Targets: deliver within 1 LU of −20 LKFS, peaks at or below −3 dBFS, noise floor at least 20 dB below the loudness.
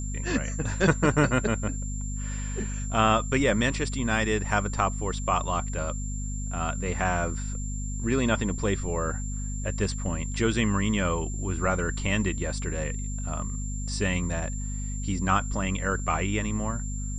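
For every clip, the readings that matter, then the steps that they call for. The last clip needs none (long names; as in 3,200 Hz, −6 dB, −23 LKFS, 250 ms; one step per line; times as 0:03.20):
mains hum 50 Hz; hum harmonics up to 250 Hz; level of the hum −29 dBFS; interfering tone 7,300 Hz; level of the tone −39 dBFS; integrated loudness −28.0 LKFS; sample peak −6.0 dBFS; target loudness −20.0 LKFS
→ mains-hum notches 50/100/150/200/250 Hz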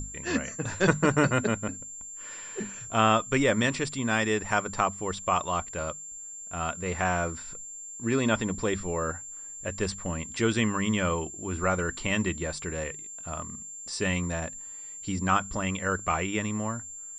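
mains hum none found; interfering tone 7,300 Hz; level of the tone −39 dBFS
→ notch filter 7,300 Hz, Q 30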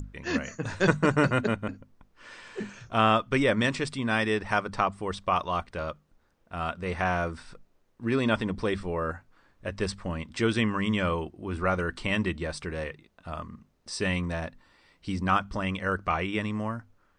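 interfering tone none found; integrated loudness −28.5 LKFS; sample peak −8.0 dBFS; target loudness −20.0 LKFS
→ level +8.5 dB
brickwall limiter −3 dBFS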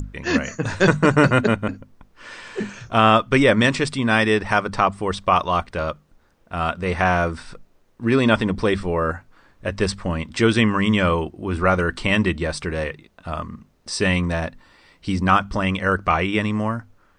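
integrated loudness −20.5 LKFS; sample peak −3.0 dBFS; background noise floor −58 dBFS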